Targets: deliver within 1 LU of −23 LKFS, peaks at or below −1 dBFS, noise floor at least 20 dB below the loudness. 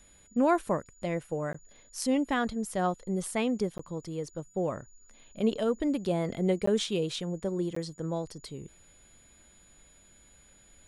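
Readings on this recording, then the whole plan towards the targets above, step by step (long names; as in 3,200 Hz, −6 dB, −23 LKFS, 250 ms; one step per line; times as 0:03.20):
number of dropouts 4; longest dropout 14 ms; interfering tone 6,900 Hz; level of the tone −59 dBFS; integrated loudness −31.0 LKFS; sample peak −14.0 dBFS; target loudness −23.0 LKFS
→ repair the gap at 0:01.53/0:03.78/0:06.66/0:07.75, 14 ms
notch filter 6,900 Hz, Q 30
level +8 dB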